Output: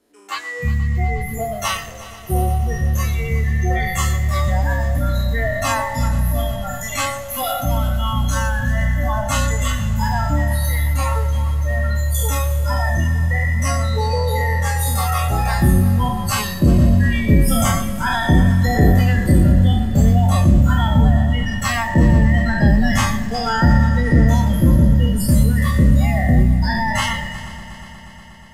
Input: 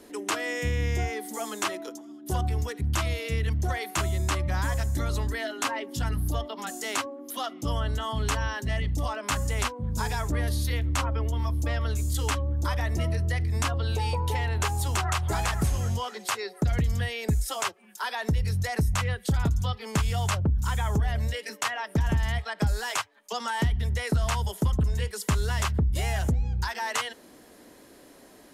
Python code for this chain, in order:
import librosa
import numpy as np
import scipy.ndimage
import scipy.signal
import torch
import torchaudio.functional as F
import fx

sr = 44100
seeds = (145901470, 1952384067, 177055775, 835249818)

y = fx.spec_trails(x, sr, decay_s=2.53)
y = fx.noise_reduce_blind(y, sr, reduce_db=24)
y = fx.echo_heads(y, sr, ms=120, heads='first and third', feedback_pct=74, wet_db=-18.0)
y = y * 10.0 ** (8.0 / 20.0)